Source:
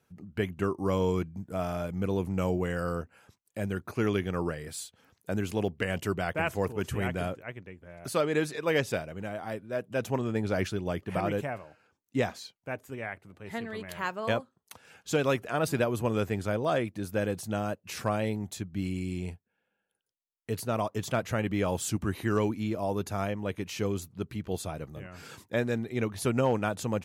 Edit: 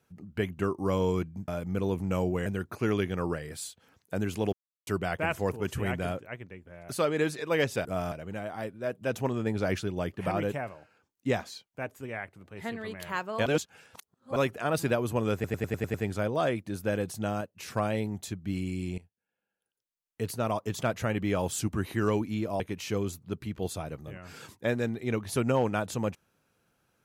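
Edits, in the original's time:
1.48–1.75 s: move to 9.01 s
2.73–3.62 s: delete
5.69–6.03 s: mute
14.35–15.25 s: reverse
16.23 s: stutter 0.10 s, 7 plays
17.70–18.05 s: gain -3.5 dB
19.27–20.53 s: fade in, from -18 dB
22.89–23.49 s: delete

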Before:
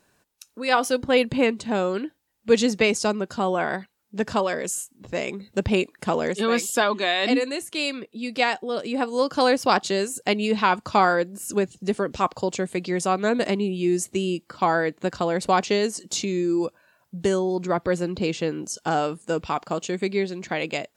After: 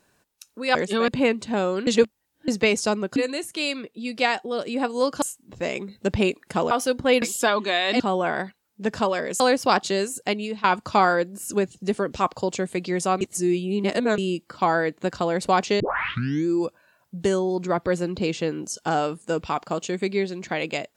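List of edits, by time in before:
0.75–1.26 s: swap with 6.23–6.56 s
2.05–2.66 s: reverse
3.34–4.74 s: swap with 7.34–9.40 s
9.99–10.64 s: fade out equal-power, to -17 dB
13.21–14.18 s: reverse
15.80 s: tape start 0.67 s

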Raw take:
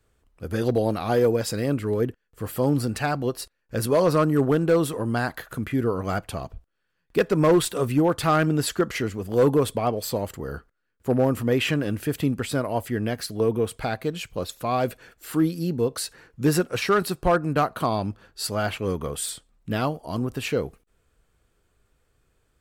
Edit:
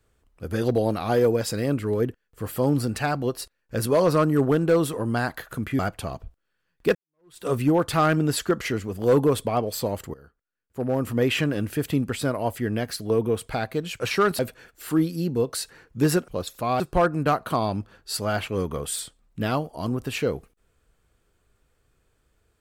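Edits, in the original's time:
5.79–6.09 s: delete
7.25–7.76 s: fade in exponential
10.44–11.48 s: fade in quadratic, from -17.5 dB
14.30–14.82 s: swap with 16.71–17.10 s

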